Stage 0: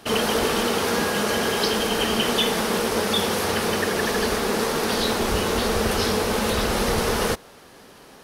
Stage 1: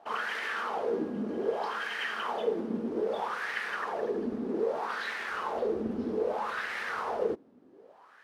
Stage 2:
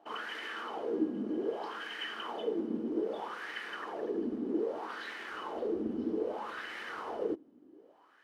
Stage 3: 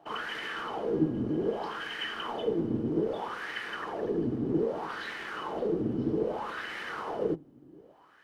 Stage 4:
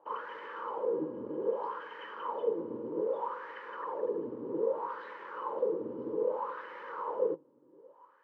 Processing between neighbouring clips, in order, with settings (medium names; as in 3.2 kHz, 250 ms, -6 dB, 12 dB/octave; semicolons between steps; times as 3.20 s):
companded quantiser 4-bit; wah-wah 0.63 Hz 250–1900 Hz, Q 4.1
small resonant body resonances 310/3000 Hz, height 13 dB, ringing for 45 ms; trim -7.5 dB
octave divider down 1 oct, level -5 dB; trim +4 dB
two resonant band-passes 710 Hz, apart 0.87 oct; trim +6 dB